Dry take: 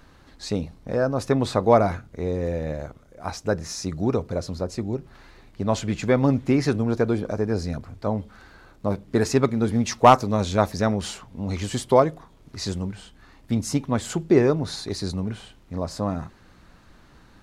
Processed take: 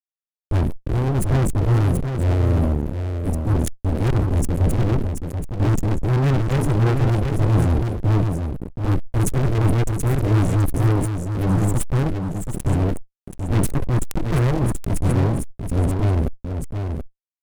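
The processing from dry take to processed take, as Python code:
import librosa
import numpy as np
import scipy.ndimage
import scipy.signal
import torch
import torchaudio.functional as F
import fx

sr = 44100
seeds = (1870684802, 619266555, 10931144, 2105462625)

p1 = scipy.signal.sosfilt(scipy.signal.cheby2(4, 50, [640.0, 4400.0], 'bandstop', fs=sr, output='sos'), x)
p2 = fx.high_shelf(p1, sr, hz=3200.0, db=-8.5)
p3 = np.abs(p2)
p4 = fx.tone_stack(p3, sr, knobs='6-0-2')
p5 = fx.rider(p4, sr, range_db=5, speed_s=0.5)
p6 = p4 + F.gain(torch.from_numpy(p5), -2.0).numpy()
p7 = fx.fuzz(p6, sr, gain_db=45.0, gate_db=-49.0)
p8 = p7 + 10.0 ** (-6.5 / 20.0) * np.pad(p7, (int(730 * sr / 1000.0), 0))[:len(p7)]
p9 = fx.sustainer(p8, sr, db_per_s=38.0)
y = F.gain(torch.from_numpy(p9), -1.5).numpy()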